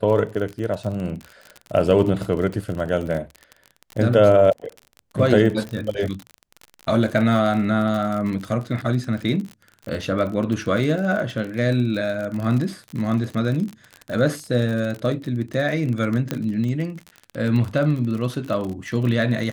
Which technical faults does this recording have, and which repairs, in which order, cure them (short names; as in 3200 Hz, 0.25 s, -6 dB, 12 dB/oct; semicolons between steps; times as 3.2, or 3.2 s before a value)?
crackle 42/s -27 dBFS
16.31 pop -10 dBFS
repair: de-click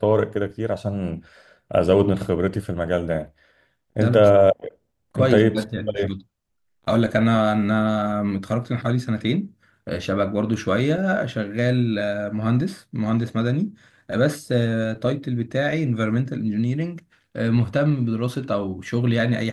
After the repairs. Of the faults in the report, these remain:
none